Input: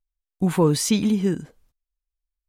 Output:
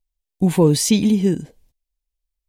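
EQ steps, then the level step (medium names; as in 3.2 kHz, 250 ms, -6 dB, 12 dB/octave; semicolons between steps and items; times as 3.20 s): peaking EQ 1.3 kHz -14.5 dB 0.59 oct; +4.5 dB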